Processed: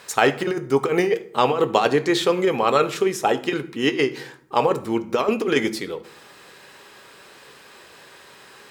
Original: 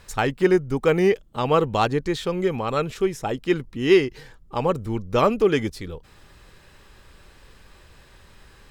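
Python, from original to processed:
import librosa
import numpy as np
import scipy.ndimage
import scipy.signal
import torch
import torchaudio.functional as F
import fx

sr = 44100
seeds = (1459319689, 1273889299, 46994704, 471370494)

y = scipy.signal.sosfilt(scipy.signal.butter(2, 320.0, 'highpass', fs=sr, output='sos'), x)
y = fx.over_compress(y, sr, threshold_db=-22.0, ratio=-0.5)
y = fx.rev_fdn(y, sr, rt60_s=0.58, lf_ratio=1.45, hf_ratio=0.75, size_ms=43.0, drr_db=9.0)
y = F.gain(torch.from_numpy(y), 5.0).numpy()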